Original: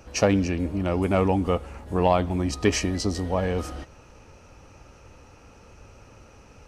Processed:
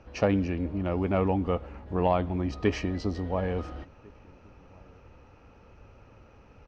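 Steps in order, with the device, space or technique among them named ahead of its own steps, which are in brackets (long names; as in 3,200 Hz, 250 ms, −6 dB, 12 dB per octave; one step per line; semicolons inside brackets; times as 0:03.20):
shout across a valley (high-frequency loss of the air 230 metres; slap from a distant wall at 240 metres, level −27 dB)
level −3.5 dB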